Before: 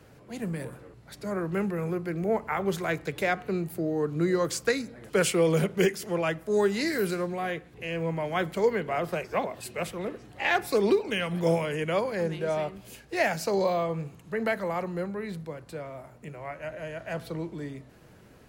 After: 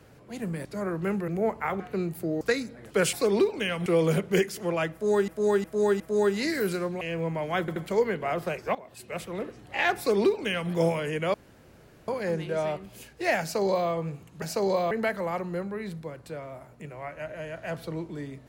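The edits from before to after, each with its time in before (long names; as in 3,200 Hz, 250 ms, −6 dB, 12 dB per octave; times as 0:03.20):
0:00.65–0:01.15: remove
0:01.78–0:02.15: remove
0:02.67–0:03.35: remove
0:03.96–0:04.60: remove
0:06.38–0:06.74: repeat, 4 plays
0:07.39–0:07.83: remove
0:08.42: stutter 0.08 s, 3 plays
0:09.41–0:10.04: fade in, from −15.5 dB
0:10.64–0:11.37: duplicate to 0:05.32
0:12.00: splice in room tone 0.74 s
0:13.33–0:13.82: duplicate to 0:14.34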